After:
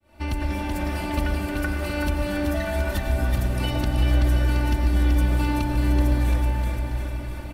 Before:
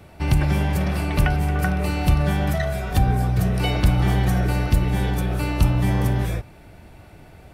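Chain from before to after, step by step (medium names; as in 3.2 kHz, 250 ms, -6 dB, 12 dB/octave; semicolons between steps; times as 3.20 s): fade-in on the opening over 0.53 s; comb 3.4 ms, depth 90%; compression 6:1, threshold -27 dBFS, peak gain reduction 17.5 dB; bouncing-ball echo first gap 380 ms, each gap 0.9×, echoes 5; reverberation RT60 0.80 s, pre-delay 89 ms, DRR 6.5 dB; trim +2 dB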